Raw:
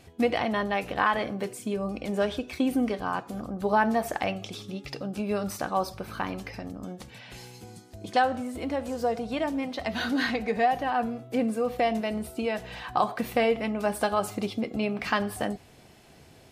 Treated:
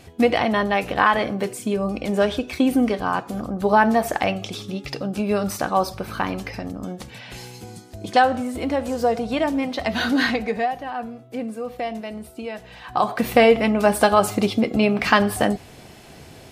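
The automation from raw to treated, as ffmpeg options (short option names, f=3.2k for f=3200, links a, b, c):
-af "volume=19.5dB,afade=t=out:st=10.26:d=0.49:silence=0.334965,afade=t=in:st=12.8:d=0.56:silence=0.237137"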